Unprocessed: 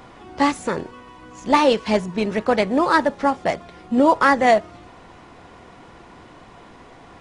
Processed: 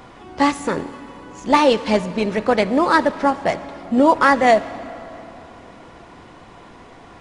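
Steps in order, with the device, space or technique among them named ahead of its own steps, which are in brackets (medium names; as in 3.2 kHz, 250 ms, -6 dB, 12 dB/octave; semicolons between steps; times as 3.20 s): saturated reverb return (on a send at -13 dB: reverberation RT60 2.9 s, pre-delay 52 ms + saturation -16 dBFS, distortion -12 dB); on the sum: trim +1.5 dB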